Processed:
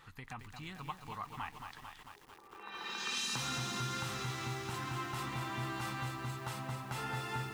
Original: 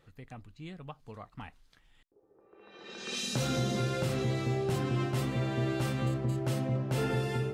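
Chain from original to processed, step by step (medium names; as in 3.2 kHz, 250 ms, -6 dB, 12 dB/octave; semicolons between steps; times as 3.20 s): compression 2.5:1, threshold -48 dBFS, peak gain reduction 14 dB; resonant low shelf 740 Hz -7.5 dB, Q 3; bit-crushed delay 223 ms, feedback 80%, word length 11-bit, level -6 dB; trim +8.5 dB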